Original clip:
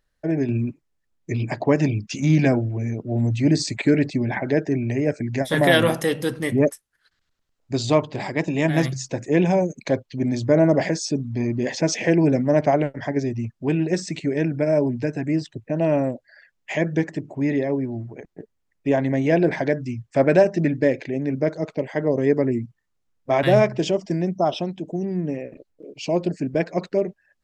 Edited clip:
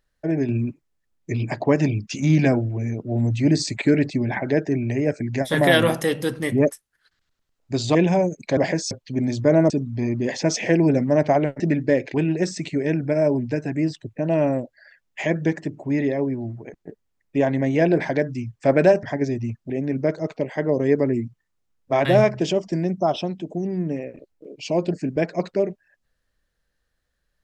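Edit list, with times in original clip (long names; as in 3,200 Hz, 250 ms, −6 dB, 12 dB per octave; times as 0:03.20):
0:07.95–0:09.33: remove
0:10.74–0:11.08: move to 0:09.95
0:12.98–0:13.65: swap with 0:20.54–0:21.08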